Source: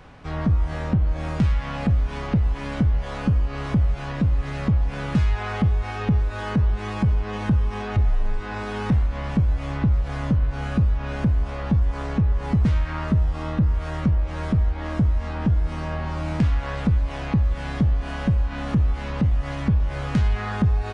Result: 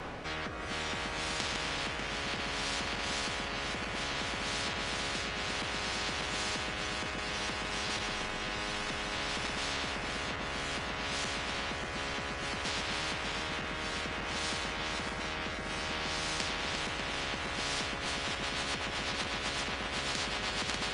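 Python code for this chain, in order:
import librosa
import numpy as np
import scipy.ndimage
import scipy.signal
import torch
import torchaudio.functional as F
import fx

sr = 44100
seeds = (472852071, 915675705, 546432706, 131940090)

p1 = fx.reverse_delay_fb(x, sr, ms=296, feedback_pct=72, wet_db=-3.5)
p2 = 10.0 ** (-24.0 / 20.0) * np.tanh(p1 / 10.0 ** (-24.0 / 20.0))
p3 = p1 + (p2 * librosa.db_to_amplitude(-9.5))
p4 = fx.rotary_switch(p3, sr, hz=0.6, then_hz=8.0, switch_at_s=17.61)
p5 = fx.spectral_comp(p4, sr, ratio=10.0)
y = p5 * librosa.db_to_amplitude(-5.0)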